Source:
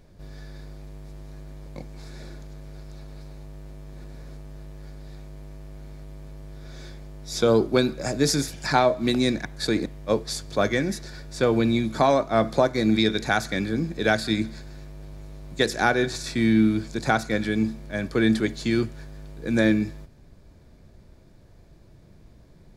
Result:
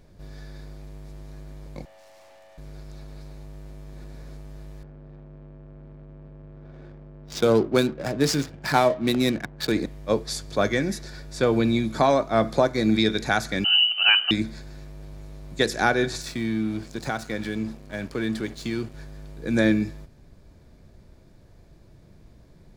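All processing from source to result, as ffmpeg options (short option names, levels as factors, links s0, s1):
-filter_complex "[0:a]asettb=1/sr,asplit=3[s0][s1][s2];[s0]atrim=end=1.854[s3];[s1]atrim=start=1.85:end=2.58,asetpts=PTS-STARTPTS,afade=t=in:d=0.004:c=qsin,afade=t=out:st=0.726:d=0.004:c=qsin,asplit=2[s4][s5];[s5]adelay=12,volume=0.376[s6];[s4][s6]amix=inputs=2:normalize=0,atrim=end_sample=32193,afreqshift=500,aeval=exprs='(tanh(355*val(0)+0.55)-tanh(0.55))/355':c=same[s7];[s2]atrim=start=2.576[s8];[s3][s7]acrossfade=d=0.004:c1=hsin:c2=qsin[s9];[s9][s8]acrossfade=d=0.004:c1=qsin:c2=hsin,asettb=1/sr,asplit=3[s10][s11][s12];[s10]atrim=end=4.834[s13];[s11]atrim=start=4.83:end=9.72,asetpts=PTS-STARTPTS,afade=t=in:d=0.004:c=qsin,afade=t=out:st=4.886:d=0.004:c=qsin,highpass=69,adynamicsmooth=sensitivity=8:basefreq=590[s14];[s12]atrim=start=9.716[s15];[s13][s14]acrossfade=d=0.004:c1=hsin:c2=qsin[s16];[s16][s15]acrossfade=d=0.004:c1=qsin:c2=hsin,asettb=1/sr,asplit=3[s17][s18][s19];[s17]atrim=end=13.644[s20];[s18]atrim=start=13.64:end=14.31,asetpts=PTS-STARTPTS,afade=t=in:d=0.004:c=qsin,afade=t=out:st=0.666:d=0.004:c=qsin,equalizer=f=94:w=0.77:g=14.5,lowpass=f=2600:t=q:w=0.5098,lowpass=f=2600:t=q:w=0.6013,lowpass=f=2600:t=q:w=0.9,lowpass=f=2600:t=q:w=2.563,afreqshift=-3100[s21];[s19]atrim=start=14.306[s22];[s20][s21]acrossfade=d=0.004:c1=hsin:c2=qsin[s23];[s23][s22]acrossfade=d=0.004:c1=qsin:c2=hsin,asettb=1/sr,asplit=3[s24][s25][s26];[s24]atrim=end=16.214[s27];[s25]atrim=start=16.21:end=18.94,asetpts=PTS-STARTPTS,afade=t=in:d=0.004:c=qsin,afade=t=out:st=2.726:d=0.004:c=qsin,acompressor=threshold=0.0501:ratio=2:attack=3.2:release=140:knee=1:detection=peak,aeval=exprs='sgn(val(0))*max(abs(val(0))-0.00668,0)':c=same[s28];[s26]atrim=start=18.936[s29];[s27][s28]acrossfade=d=0.004:c1=hsin:c2=qsin[s30];[s30][s29]acrossfade=d=0.004:c1=qsin:c2=hsin"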